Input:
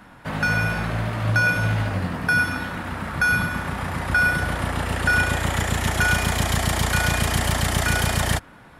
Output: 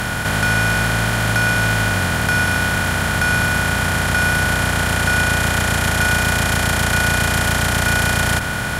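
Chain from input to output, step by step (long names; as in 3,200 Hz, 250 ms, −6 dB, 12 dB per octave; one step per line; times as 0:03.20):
compressor on every frequency bin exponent 0.2
level −2 dB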